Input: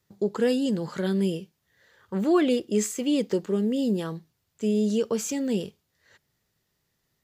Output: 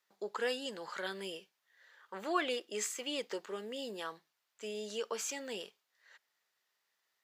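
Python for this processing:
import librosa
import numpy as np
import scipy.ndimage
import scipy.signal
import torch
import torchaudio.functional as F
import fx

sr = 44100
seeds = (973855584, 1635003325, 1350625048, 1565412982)

y = scipy.signal.sosfilt(scipy.signal.butter(2, 920.0, 'highpass', fs=sr, output='sos'), x)
y = fx.high_shelf(y, sr, hz=4700.0, db=-9.0)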